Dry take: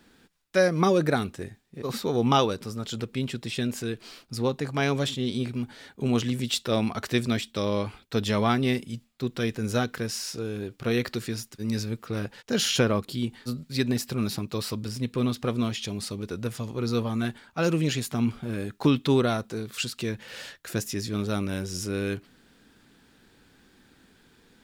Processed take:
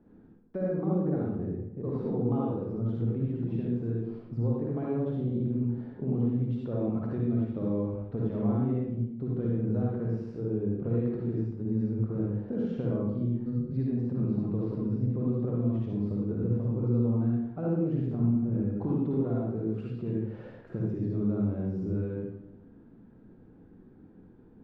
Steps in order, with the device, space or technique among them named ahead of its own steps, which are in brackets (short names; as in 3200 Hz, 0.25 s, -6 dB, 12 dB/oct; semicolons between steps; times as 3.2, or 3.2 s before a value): television next door (compressor 4:1, threshold -32 dBFS, peak gain reduction 13 dB; LPF 540 Hz 12 dB/oct; reverb RT60 0.85 s, pre-delay 49 ms, DRR -4 dB)